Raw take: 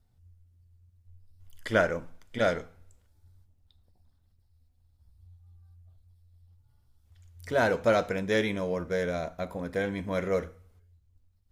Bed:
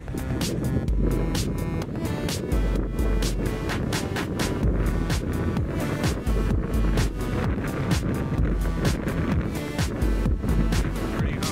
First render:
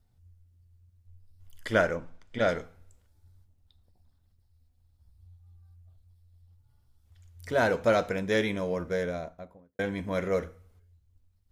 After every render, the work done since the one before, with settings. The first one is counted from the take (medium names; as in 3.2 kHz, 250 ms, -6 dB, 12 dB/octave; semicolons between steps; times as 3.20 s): 1.95–2.49 s: distance through air 62 m; 8.85–9.79 s: studio fade out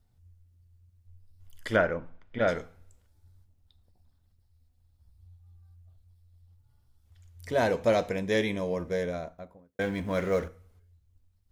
1.76–2.48 s: low-pass 2.7 kHz; 7.47–9.13 s: peaking EQ 1.4 kHz -11 dB 0.24 oct; 9.81–10.48 s: companding laws mixed up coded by mu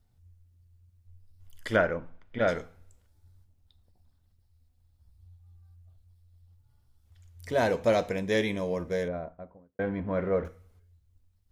9.08–10.45 s: low-pass 1.5 kHz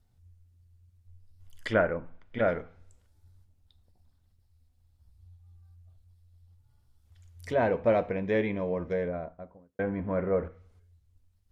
low-pass that closes with the level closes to 1.5 kHz, closed at -26.5 dBFS; dynamic bell 2.5 kHz, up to +6 dB, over -52 dBFS, Q 2.1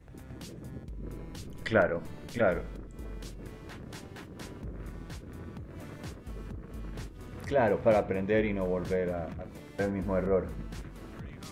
add bed -18 dB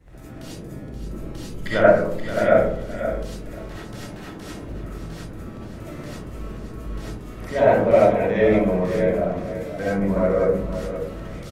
feedback delay 527 ms, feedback 18%, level -10 dB; algorithmic reverb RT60 0.63 s, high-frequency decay 0.3×, pre-delay 25 ms, DRR -8 dB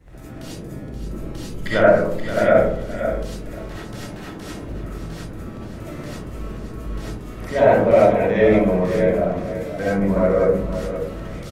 trim +2.5 dB; peak limiter -3 dBFS, peak gain reduction 3 dB